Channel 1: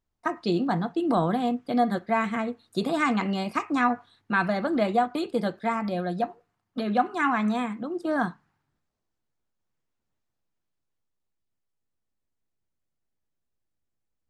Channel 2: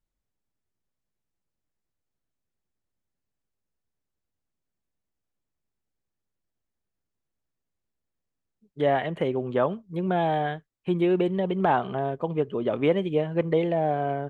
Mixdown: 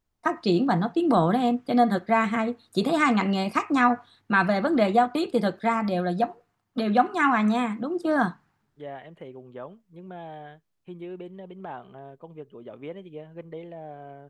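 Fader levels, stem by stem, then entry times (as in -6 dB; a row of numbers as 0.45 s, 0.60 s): +3.0 dB, -15.5 dB; 0.00 s, 0.00 s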